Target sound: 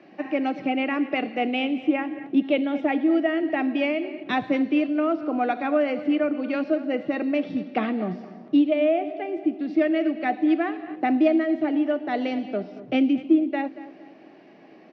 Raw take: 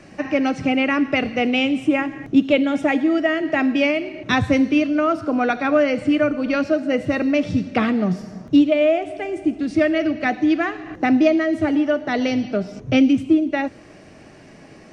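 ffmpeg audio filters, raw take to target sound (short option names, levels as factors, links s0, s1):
-filter_complex "[0:a]highpass=f=190:w=0.5412,highpass=f=190:w=1.3066,equalizer=f=340:t=q:w=4:g=6,equalizer=f=740:t=q:w=4:g=6,equalizer=f=1400:t=q:w=4:g=-3,lowpass=f=4000:w=0.5412,lowpass=f=4000:w=1.3066,asplit=2[s0][s1];[s1]adelay=231,lowpass=f=2600:p=1,volume=0.168,asplit=2[s2][s3];[s3]adelay=231,lowpass=f=2600:p=1,volume=0.4,asplit=2[s4][s5];[s5]adelay=231,lowpass=f=2600:p=1,volume=0.4,asplit=2[s6][s7];[s7]adelay=231,lowpass=f=2600:p=1,volume=0.4[s8];[s2][s4][s6][s8]amix=inputs=4:normalize=0[s9];[s0][s9]amix=inputs=2:normalize=0,volume=0.447"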